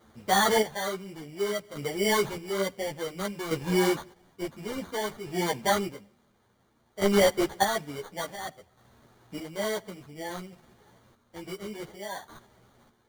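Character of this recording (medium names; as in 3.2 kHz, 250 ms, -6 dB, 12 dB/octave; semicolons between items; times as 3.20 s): chopped level 0.57 Hz, depth 60%, duty 35%; aliases and images of a low sample rate 2.6 kHz, jitter 0%; a shimmering, thickened sound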